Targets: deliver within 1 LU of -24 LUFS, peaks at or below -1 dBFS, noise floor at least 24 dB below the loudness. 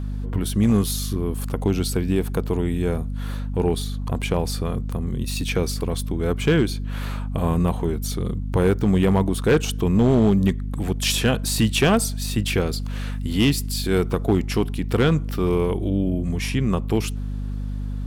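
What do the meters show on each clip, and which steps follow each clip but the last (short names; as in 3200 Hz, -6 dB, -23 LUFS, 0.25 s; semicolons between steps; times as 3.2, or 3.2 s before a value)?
clipped 0.6%; flat tops at -11.0 dBFS; hum 50 Hz; harmonics up to 250 Hz; hum level -25 dBFS; loudness -22.5 LUFS; peak -11.0 dBFS; loudness target -24.0 LUFS
-> clip repair -11 dBFS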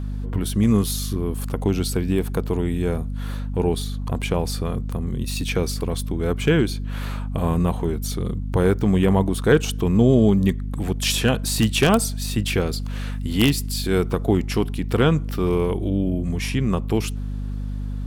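clipped 0.0%; hum 50 Hz; harmonics up to 250 Hz; hum level -25 dBFS
-> de-hum 50 Hz, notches 5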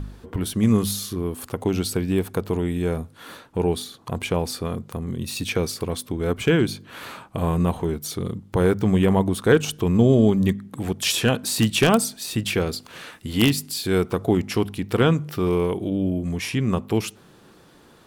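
hum none; loudness -23.0 LUFS; peak -1.5 dBFS; loudness target -24.0 LUFS
-> gain -1 dB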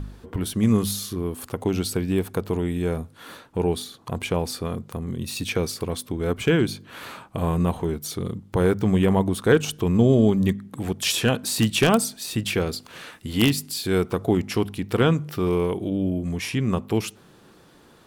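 loudness -24.0 LUFS; peak -2.5 dBFS; noise floor -53 dBFS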